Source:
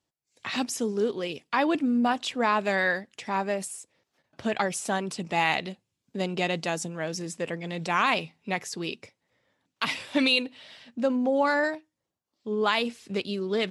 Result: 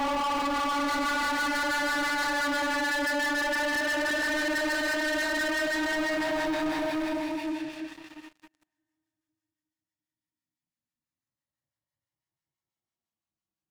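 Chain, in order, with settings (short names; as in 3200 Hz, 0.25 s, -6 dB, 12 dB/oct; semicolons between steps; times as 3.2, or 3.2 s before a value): in parallel at -7.5 dB: overloaded stage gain 25.5 dB; on the sum: Paulstretch 20×, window 0.10 s, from 11.42; bell 480 Hz -15 dB 0.52 oct; reverse; compressor 4:1, threshold -34 dBFS, peak gain reduction 12.5 dB; reverse; harmonic tremolo 6 Hz, depth 50%, crossover 890 Hz; sample leveller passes 5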